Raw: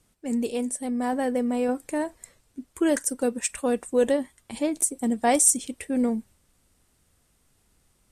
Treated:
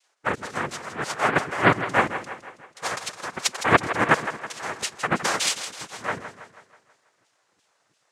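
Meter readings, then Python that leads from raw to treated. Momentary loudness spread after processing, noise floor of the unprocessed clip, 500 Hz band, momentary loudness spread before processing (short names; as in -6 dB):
13 LU, -67 dBFS, -2.5 dB, 11 LU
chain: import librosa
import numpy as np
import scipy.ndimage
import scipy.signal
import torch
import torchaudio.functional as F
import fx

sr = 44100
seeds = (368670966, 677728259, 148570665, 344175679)

y = fx.filter_lfo_highpass(x, sr, shape='saw_down', hz=2.9, low_hz=360.0, high_hz=2600.0, q=5.5)
y = fx.noise_vocoder(y, sr, seeds[0], bands=3)
y = fx.echo_split(y, sr, split_hz=370.0, low_ms=111, high_ms=162, feedback_pct=52, wet_db=-11)
y = y * 10.0 ** (-1.0 / 20.0)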